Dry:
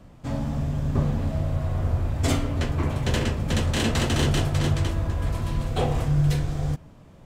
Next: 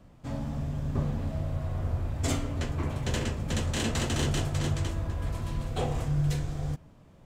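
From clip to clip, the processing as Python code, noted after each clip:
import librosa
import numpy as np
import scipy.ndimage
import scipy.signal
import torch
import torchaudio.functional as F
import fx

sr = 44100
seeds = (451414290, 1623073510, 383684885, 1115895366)

y = fx.dynamic_eq(x, sr, hz=7100.0, q=2.1, threshold_db=-52.0, ratio=4.0, max_db=5)
y = y * librosa.db_to_amplitude(-6.0)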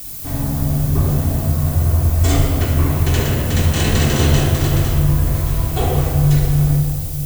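y = fx.dmg_noise_colour(x, sr, seeds[0], colour='violet', level_db=-40.0)
y = fx.room_shoebox(y, sr, seeds[1], volume_m3=2900.0, walls='mixed', distance_m=3.4)
y = y * librosa.db_to_amplitude(6.5)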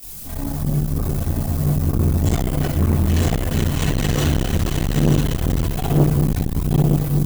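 y = fx.chorus_voices(x, sr, voices=4, hz=0.52, base_ms=24, depth_ms=3.6, mix_pct=70)
y = y + 10.0 ** (-3.0 / 20.0) * np.pad(y, (int(936 * sr / 1000.0), 0))[:len(y)]
y = fx.transformer_sat(y, sr, knee_hz=320.0)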